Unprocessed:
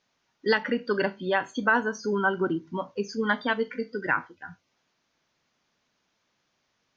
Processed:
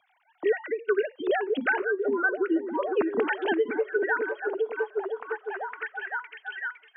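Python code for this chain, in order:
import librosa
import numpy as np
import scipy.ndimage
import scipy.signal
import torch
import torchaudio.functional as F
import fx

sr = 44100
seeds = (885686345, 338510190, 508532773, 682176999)

y = fx.sine_speech(x, sr)
y = fx.rider(y, sr, range_db=10, speed_s=0.5)
y = fx.echo_stepped(y, sr, ms=507, hz=260.0, octaves=0.7, feedback_pct=70, wet_db=-3)
y = fx.band_squash(y, sr, depth_pct=70)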